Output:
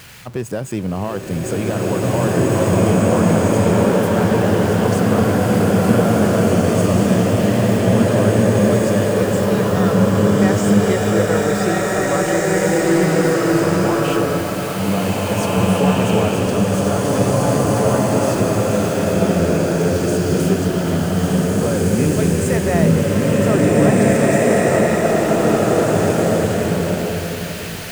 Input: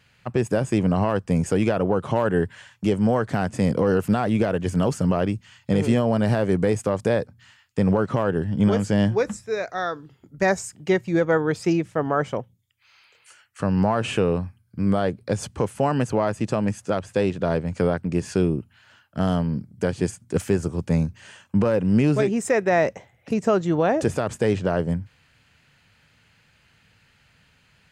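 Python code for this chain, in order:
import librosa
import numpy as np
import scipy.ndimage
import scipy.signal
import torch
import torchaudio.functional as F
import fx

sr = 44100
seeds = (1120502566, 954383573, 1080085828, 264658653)

y = x + 0.5 * 10.0 ** (-32.5 / 20.0) * np.sign(x)
y = fx.high_shelf(y, sr, hz=7900.0, db=4.5)
y = fx.rev_bloom(y, sr, seeds[0], attack_ms=2080, drr_db=-9.0)
y = y * librosa.db_to_amplitude(-3.0)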